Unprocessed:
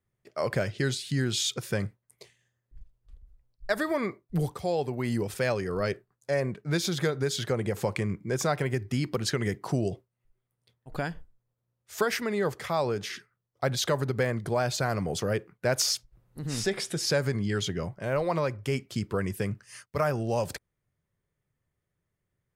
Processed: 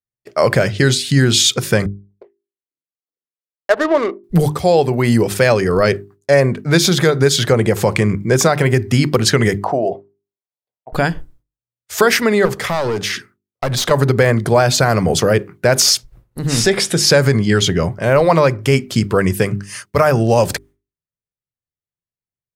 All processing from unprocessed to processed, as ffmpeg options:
-filter_complex "[0:a]asettb=1/sr,asplit=3[s0][s1][s2];[s0]atrim=end=1.864[s3];[s1]atrim=start=1.86:end=4.24,asetpts=PTS-STARTPTS,afade=t=in:d=0.004:c=qsin,afade=t=out:st=2.376:d=0.004:c=qsin,highpass=f=320:w=0.5412,highpass=f=320:w=1.3066,equalizer=f=5800:t=o:w=2.3:g=-14,adynamicsmooth=sensitivity=7:basefreq=680[s4];[s2]atrim=start=4.236[s5];[s3][s4]acrossfade=d=0.004:c1=hsin:c2=qsin[s6];[s6][s5]acrossfade=d=0.004:c1=qsin:c2=hsin,asettb=1/sr,asplit=3[s7][s8][s9];[s7]atrim=end=9.644[s10];[s8]atrim=start=9.64:end=10.93,asetpts=PTS-STARTPTS,afade=t=in:d=0.004:c=qsin,afade=t=out:st=1.286:d=0.004:c=qsin,bandpass=f=710:t=q:w=2.9,acontrast=67[s11];[s9]atrim=start=10.926[s12];[s10][s11]acrossfade=d=0.004:c1=hsin:c2=qsin[s13];[s13][s12]acrossfade=d=0.004:c1=qsin:c2=hsin,asettb=1/sr,asplit=3[s14][s15][s16];[s14]atrim=end=12.454[s17];[s15]atrim=start=12.45:end=13.91,asetpts=PTS-STARTPTS,afade=t=in:d=0.004:c=qsin,afade=t=out:st=1.456:d=0.004:c=qsin,aeval=exprs='clip(val(0),-1,0.0335)':c=same,acompressor=threshold=0.0251:ratio=2.5:attack=3.2:release=140:knee=1:detection=peak[s18];[s16]atrim=start=13.906[s19];[s17][s18]acrossfade=d=0.004:c1=hsin:c2=qsin[s20];[s20][s19]acrossfade=d=0.004:c1=qsin:c2=hsin,agate=range=0.0224:threshold=0.00251:ratio=3:detection=peak,bandreject=f=50:t=h:w=6,bandreject=f=100:t=h:w=6,bandreject=f=150:t=h:w=6,bandreject=f=200:t=h:w=6,bandreject=f=250:t=h:w=6,bandreject=f=300:t=h:w=6,bandreject=f=350:t=h:w=6,bandreject=f=400:t=h:w=6,alimiter=level_in=7.08:limit=0.891:release=50:level=0:latency=1,volume=0.891"

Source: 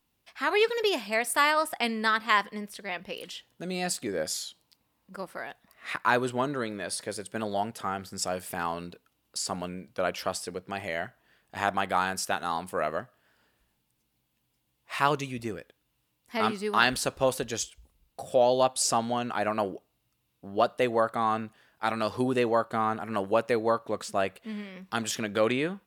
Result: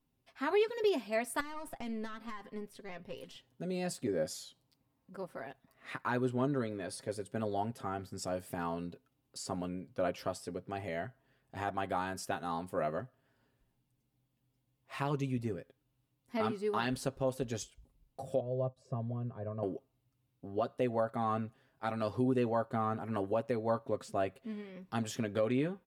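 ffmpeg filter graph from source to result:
-filter_complex "[0:a]asettb=1/sr,asplit=3[s0][s1][s2];[s0]atrim=end=1.404[s3];[s1]atrim=start=1.4:end=3.36,asetpts=PTS-STARTPTS,afade=t=in:d=0.004:c=qsin,afade=t=out:st=1.956:d=0.004:c=qsin,acompressor=threshold=0.0355:ratio=6:attack=3.2:release=140:knee=1:detection=peak,aeval=exprs='(tanh(20*val(0)+0.5)-tanh(0.5))/20':c=same[s4];[s2]atrim=start=3.356[s5];[s3][s4]acrossfade=d=0.004:c1=hsin:c2=qsin[s6];[s6][s5]acrossfade=d=0.004:c1=qsin:c2=hsin,asettb=1/sr,asplit=3[s7][s8][s9];[s7]atrim=end=18.404[s10];[s8]atrim=start=18.4:end=19.63,asetpts=PTS-STARTPTS,afade=t=in:d=0.004:c=qsin,afade=t=out:st=1.226:d=0.004:c=qsin,agate=range=0.0224:threshold=0.0158:ratio=3:release=100:detection=peak,bandpass=f=130:t=q:w=0.77,aecho=1:1:1.8:0.7,atrim=end_sample=54243[s11];[s9]atrim=start=19.626[s12];[s10][s11]acrossfade=d=0.004:c1=hsin:c2=qsin[s13];[s13][s12]acrossfade=d=0.004:c1=qsin:c2=hsin,tiltshelf=f=670:g=6.5,aecho=1:1:7.5:0.55,alimiter=limit=0.188:level=0:latency=1:release=265,volume=0.473"

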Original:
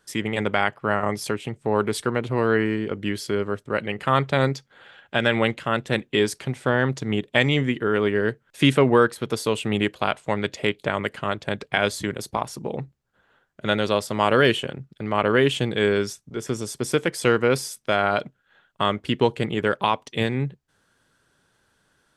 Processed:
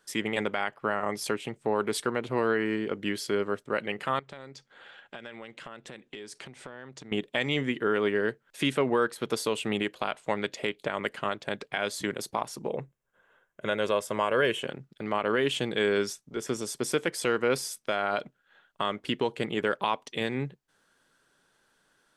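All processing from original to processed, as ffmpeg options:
-filter_complex "[0:a]asettb=1/sr,asplit=3[s0][s1][s2];[s0]atrim=end=4.194[s3];[s1]atrim=start=4.19:end=7.12,asetpts=PTS-STARTPTS,afade=t=in:d=0.004:c=qsin,afade=t=out:st=2.926:d=0.004:c=qsin,lowpass=f=10000:w=0.5412,lowpass=f=10000:w=1.3066,acompressor=threshold=0.0158:ratio=8:attack=3.2:release=140:knee=1:detection=peak[s4];[s2]atrim=start=7.116[s5];[s3][s4]acrossfade=d=0.004:c1=hsin:c2=qsin[s6];[s6][s5]acrossfade=d=0.004:c1=qsin:c2=hsin,asettb=1/sr,asplit=3[s7][s8][s9];[s7]atrim=end=12.684[s10];[s8]atrim=start=12.68:end=14.61,asetpts=PTS-STARTPTS,afade=t=in:d=0.004:c=qsin,afade=t=out:st=1.926:d=0.004:c=qsin,equalizer=f=4400:w=3.2:g=-12.5,aecho=1:1:1.9:0.32,atrim=end_sample=85113[s11];[s9]atrim=start=14.606[s12];[s10][s11]acrossfade=d=0.004:c1=hsin:c2=qsin[s13];[s13][s12]acrossfade=d=0.004:c1=qsin:c2=hsin,alimiter=limit=0.266:level=0:latency=1:release=191,equalizer=f=75:t=o:w=1.7:g=-14.5,volume=0.794"

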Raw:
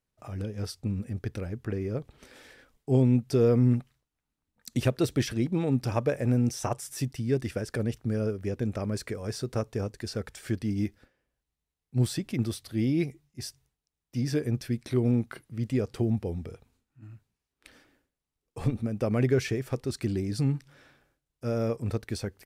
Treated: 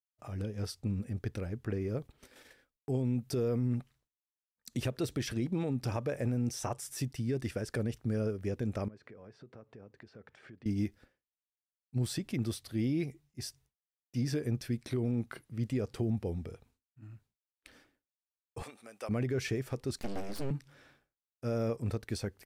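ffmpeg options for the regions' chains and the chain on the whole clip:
-filter_complex "[0:a]asettb=1/sr,asplit=3[s0][s1][s2];[s0]atrim=end=1.884[s3];[s1]atrim=start=1.88:end=3.69,asetpts=PTS-STARTPTS,afade=t=in:d=0.004:c=qsin,afade=t=out:st=1.806:d=0.004:c=qsin,agate=range=0.447:threshold=0.00224:ratio=16:release=100:detection=peak,highshelf=f=12000:g=9.5[s4];[s2]atrim=start=3.686[s5];[s3][s4]acrossfade=d=0.004:c1=hsin:c2=qsin[s6];[s6][s5]acrossfade=d=0.004:c1=qsin:c2=hsin,asettb=1/sr,asplit=3[s7][s8][s9];[s7]atrim=end=8.884[s10];[s8]atrim=start=8.88:end=10.66,asetpts=PTS-STARTPTS,afade=t=in:d=0.004:c=qsin,afade=t=out:st=1.776:d=0.004:c=qsin,acompressor=threshold=0.00631:ratio=8:attack=3.2:release=140:knee=1:detection=peak,highpass=130,lowpass=2300[s11];[s9]atrim=start=10.656[s12];[s10][s11]acrossfade=d=0.004:c1=hsin:c2=qsin[s13];[s13][s12]acrossfade=d=0.004:c1=qsin:c2=hsin,asettb=1/sr,asplit=3[s14][s15][s16];[s14]atrim=end=18.634[s17];[s15]atrim=start=18.63:end=19.09,asetpts=PTS-STARTPTS,afade=t=in:d=0.004:c=qsin,afade=t=out:st=0.456:d=0.004:c=qsin,highpass=890,equalizer=f=8700:t=o:w=0.56:g=6[s18];[s16]atrim=start=19.086[s19];[s17][s18]acrossfade=d=0.004:c1=hsin:c2=qsin[s20];[s20][s19]acrossfade=d=0.004:c1=qsin:c2=hsin,asettb=1/sr,asplit=3[s21][s22][s23];[s21]atrim=end=19.984[s24];[s22]atrim=start=19.98:end=20.51,asetpts=PTS-STARTPTS,afade=t=in:d=0.004:c=qsin,afade=t=out:st=0.526:d=0.004:c=qsin,equalizer=f=170:t=o:w=0.66:g=-8.5,aeval=exprs='abs(val(0))':c=same[s25];[s23]atrim=start=20.506[s26];[s24][s25]acrossfade=d=0.004:c1=hsin:c2=qsin[s27];[s27][s26]acrossfade=d=0.004:c1=qsin:c2=hsin,agate=range=0.0224:threshold=0.00126:ratio=3:detection=peak,alimiter=limit=0.0891:level=0:latency=1:release=76,volume=0.708"

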